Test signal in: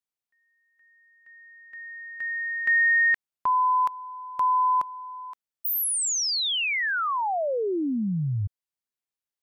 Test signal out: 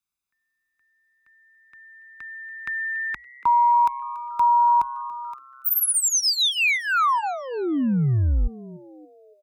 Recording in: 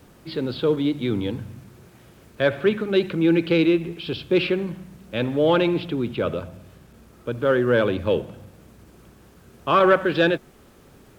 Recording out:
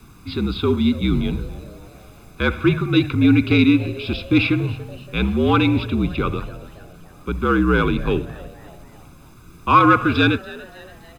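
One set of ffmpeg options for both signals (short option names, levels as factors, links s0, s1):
-filter_complex "[0:a]bandreject=f=930:w=13,aecho=1:1:0.8:0.74,afreqshift=-57,asplit=5[s0][s1][s2][s3][s4];[s1]adelay=284,afreqshift=130,volume=0.1[s5];[s2]adelay=568,afreqshift=260,volume=0.0468[s6];[s3]adelay=852,afreqshift=390,volume=0.0221[s7];[s4]adelay=1136,afreqshift=520,volume=0.0104[s8];[s0][s5][s6][s7][s8]amix=inputs=5:normalize=0,volume=1.33"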